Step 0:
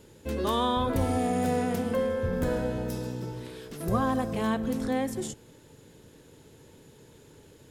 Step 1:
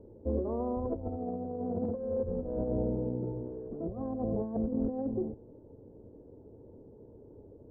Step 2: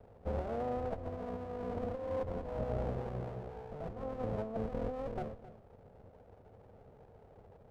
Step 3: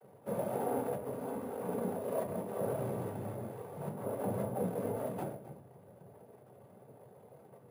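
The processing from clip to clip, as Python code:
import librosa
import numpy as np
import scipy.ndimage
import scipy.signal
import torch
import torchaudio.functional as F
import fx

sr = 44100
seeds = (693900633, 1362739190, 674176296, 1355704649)

y1 = scipy.signal.sosfilt(scipy.signal.cheby2(4, 70, 3000.0, 'lowpass', fs=sr, output='sos'), x)
y1 = fx.over_compress(y1, sr, threshold_db=-31.0, ratio=-0.5)
y1 = fx.peak_eq(y1, sr, hz=150.0, db=-11.5, octaves=0.41)
y2 = fx.lower_of_two(y1, sr, delay_ms=1.6)
y2 = y2 + 10.0 ** (-15.5 / 20.0) * np.pad(y2, (int(265 * sr / 1000.0), 0))[:len(y2)]
y2 = y2 * librosa.db_to_amplitude(-3.0)
y3 = fx.noise_vocoder(y2, sr, seeds[0], bands=16)
y3 = fx.room_shoebox(y3, sr, seeds[1], volume_m3=160.0, walls='furnished', distance_m=1.1)
y3 = np.repeat(y3[::4], 4)[:len(y3)]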